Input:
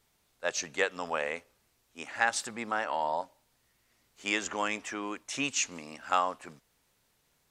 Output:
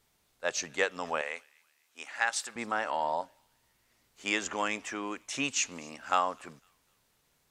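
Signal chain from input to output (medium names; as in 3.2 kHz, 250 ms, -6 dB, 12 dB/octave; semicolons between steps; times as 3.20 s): 1.21–2.56 s: high-pass 970 Hz 6 dB/octave; feedback echo behind a high-pass 251 ms, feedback 36%, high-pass 2.2 kHz, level -23.5 dB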